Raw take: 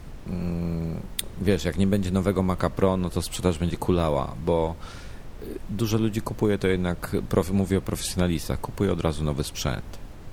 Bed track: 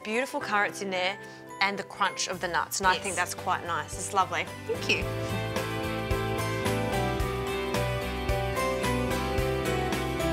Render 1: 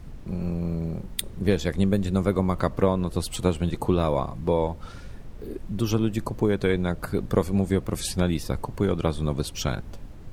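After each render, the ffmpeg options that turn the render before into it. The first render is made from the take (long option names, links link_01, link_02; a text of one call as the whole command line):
ffmpeg -i in.wav -af "afftdn=noise_reduction=6:noise_floor=-41" out.wav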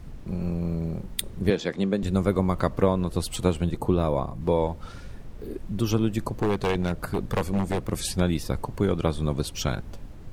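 ffmpeg -i in.wav -filter_complex "[0:a]asettb=1/sr,asplit=3[link_01][link_02][link_03];[link_01]atrim=end=1.504[link_04];[link_02]atrim=start=1.5:end=2.03,asetpts=PTS-STARTPTS,afade=type=in:duration=0.004:curve=qsin,afade=type=out:start_time=0.526:duration=0.004:curve=qsin,acrossover=split=160 7000:gain=0.0631 1 0.126[link_05][link_06][link_07];[link_05][link_06][link_07]amix=inputs=3:normalize=0[link_08];[link_03]atrim=start=2.026[link_09];[link_04][link_08]acrossfade=duration=0.004:curve1=hsin:curve2=qsin[link_10];[link_10][link_09]acrossfade=duration=0.004:curve1=qsin:curve2=hsin,asettb=1/sr,asplit=3[link_11][link_12][link_13];[link_11]atrim=end=3.644[link_14];[link_12]atrim=start=3.64:end=4.41,asetpts=PTS-STARTPTS,afade=type=in:duration=0.004:curve=qsin,afade=type=out:start_time=0.766:duration=0.004:curve=qsin,equalizer=frequency=3800:width=0.3:gain=-5[link_15];[link_13]atrim=start=4.406[link_16];[link_14][link_15]acrossfade=duration=0.004:curve1=hsin:curve2=qsin[link_17];[link_17][link_16]acrossfade=duration=0.004:curve1=qsin:curve2=hsin,asettb=1/sr,asplit=3[link_18][link_19][link_20];[link_18]atrim=end=6.294[link_21];[link_19]atrim=start=6.29:end=7.93,asetpts=PTS-STARTPTS,afade=type=in:duration=0.004:curve=qsin,afade=type=out:start_time=1.636:duration=0.004:curve=qsin,aeval=exprs='0.133*(abs(mod(val(0)/0.133+3,4)-2)-1)':channel_layout=same[link_22];[link_20]atrim=start=7.926[link_23];[link_21][link_22]acrossfade=duration=0.004:curve1=hsin:curve2=qsin[link_24];[link_24][link_23]acrossfade=duration=0.004:curve1=qsin:curve2=hsin" out.wav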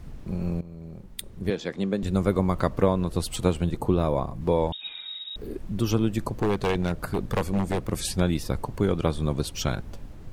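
ffmpeg -i in.wav -filter_complex "[0:a]asettb=1/sr,asplit=3[link_01][link_02][link_03];[link_01]atrim=end=4.724[link_04];[link_02]atrim=start=4.72:end=5.36,asetpts=PTS-STARTPTS,afade=type=in:duration=0.004:curve=qsin,afade=type=out:start_time=0.636:duration=0.004:curve=qsin,lowpass=frequency=3200:width_type=q:width=0.5098,lowpass=frequency=3200:width_type=q:width=0.6013,lowpass=frequency=3200:width_type=q:width=0.9,lowpass=frequency=3200:width_type=q:width=2.563,afreqshift=-3800[link_05];[link_03]atrim=start=5.356[link_06];[link_04][link_05]acrossfade=duration=0.004:curve1=hsin:curve2=qsin[link_07];[link_07][link_06]acrossfade=duration=0.004:curve1=qsin:curve2=hsin,asplit=2[link_08][link_09];[link_08]atrim=end=0.61,asetpts=PTS-STARTPTS,afade=type=out:start_time=0.606:duration=0.004:curve=hsin:silence=0.149624[link_10];[link_09]atrim=start=0.61,asetpts=PTS-STARTPTS,afade=type=in:duration=1.65:silence=0.149624[link_11];[link_10][link_11]concat=n=2:v=0:a=1" out.wav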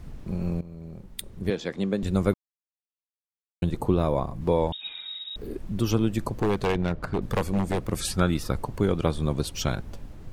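ffmpeg -i in.wav -filter_complex "[0:a]asettb=1/sr,asplit=3[link_01][link_02][link_03];[link_01]atrim=end=6.654[link_04];[link_02]atrim=start=6.65:end=7.22,asetpts=PTS-STARTPTS,afade=type=in:duration=0.004:curve=qsin,afade=type=out:start_time=0.566:duration=0.004:curve=qsin,adynamicsmooth=sensitivity=7.5:basefreq=2800[link_05];[link_03]atrim=start=7.216[link_06];[link_04][link_05]acrossfade=duration=0.004:curve1=hsin:curve2=qsin[link_07];[link_07][link_06]acrossfade=duration=0.004:curve1=qsin:curve2=hsin,asettb=1/sr,asplit=3[link_08][link_09][link_10];[link_08]atrim=end=8.004[link_11];[link_09]atrim=start=8:end=8.51,asetpts=PTS-STARTPTS,afade=type=in:duration=0.004:curve=qsin,afade=type=out:start_time=0.506:duration=0.004:curve=qsin,equalizer=frequency=1300:width=5.1:gain=13[link_12];[link_10]atrim=start=8.506[link_13];[link_11][link_12]acrossfade=duration=0.004:curve1=hsin:curve2=qsin[link_14];[link_14][link_13]acrossfade=duration=0.004:curve1=qsin:curve2=hsin,asplit=3[link_15][link_16][link_17];[link_15]atrim=end=2.34,asetpts=PTS-STARTPTS,afade=type=out:start_time=2.336:duration=0.004:curve=hsin[link_18];[link_16]atrim=start=2.34:end=3.62,asetpts=PTS-STARTPTS,volume=0[link_19];[link_17]atrim=start=3.62,asetpts=PTS-STARTPTS,afade=type=in:duration=0.004:curve=hsin[link_20];[link_18][link_19][link_20]concat=n=3:v=0:a=1" out.wav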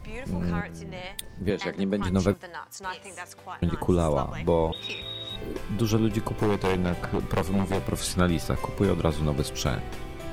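ffmpeg -i in.wav -i bed.wav -filter_complex "[1:a]volume=-11dB[link_01];[0:a][link_01]amix=inputs=2:normalize=0" out.wav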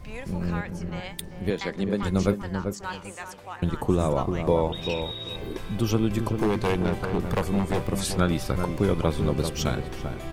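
ffmpeg -i in.wav -filter_complex "[0:a]asplit=2[link_01][link_02];[link_02]adelay=390,lowpass=frequency=1100:poles=1,volume=-6dB,asplit=2[link_03][link_04];[link_04]adelay=390,lowpass=frequency=1100:poles=1,volume=0.25,asplit=2[link_05][link_06];[link_06]adelay=390,lowpass=frequency=1100:poles=1,volume=0.25[link_07];[link_01][link_03][link_05][link_07]amix=inputs=4:normalize=0" out.wav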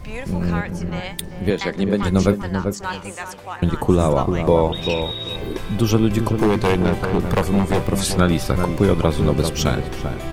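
ffmpeg -i in.wav -af "volume=7dB,alimiter=limit=-2dB:level=0:latency=1" out.wav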